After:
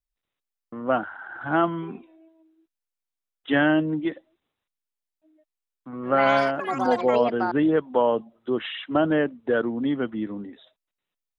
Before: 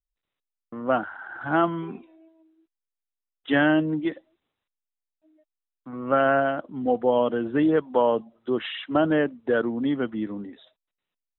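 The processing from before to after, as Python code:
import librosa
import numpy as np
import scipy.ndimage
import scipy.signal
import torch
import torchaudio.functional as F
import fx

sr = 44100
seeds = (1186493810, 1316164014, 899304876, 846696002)

y = fx.echo_pitch(x, sr, ms=134, semitones=7, count=3, db_per_echo=-6.0, at=(5.9, 8.12))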